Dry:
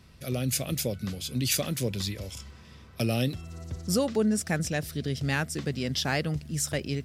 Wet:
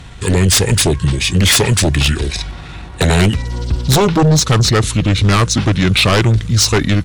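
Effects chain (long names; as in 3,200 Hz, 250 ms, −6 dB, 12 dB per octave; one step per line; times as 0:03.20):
pitch shifter −5.5 semitones
sine wavefolder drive 10 dB, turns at −13.5 dBFS
level +6.5 dB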